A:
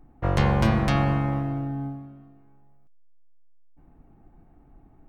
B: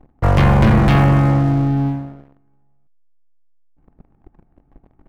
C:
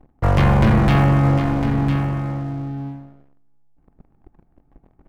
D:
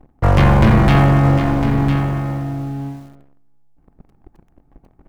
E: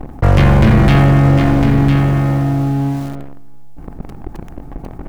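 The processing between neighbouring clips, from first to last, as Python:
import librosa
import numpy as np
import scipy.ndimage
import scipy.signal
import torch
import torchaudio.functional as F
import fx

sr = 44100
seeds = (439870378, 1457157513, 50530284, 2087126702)

y1 = fx.bass_treble(x, sr, bass_db=3, treble_db=-10)
y1 = fx.leveller(y1, sr, passes=3)
y2 = y1 + 10.0 ** (-8.5 / 20.0) * np.pad(y1, (int(1004 * sr / 1000.0), 0))[:len(y1)]
y2 = F.gain(torch.from_numpy(y2), -2.5).numpy()
y3 = fx.echo_crushed(y2, sr, ms=89, feedback_pct=55, bits=7, wet_db=-14.0)
y3 = F.gain(torch.from_numpy(y3), 3.5).numpy()
y4 = fx.dynamic_eq(y3, sr, hz=970.0, q=1.5, threshold_db=-33.0, ratio=4.0, max_db=-5)
y4 = fx.env_flatten(y4, sr, amount_pct=50)
y4 = F.gain(torch.from_numpy(y4), 1.5).numpy()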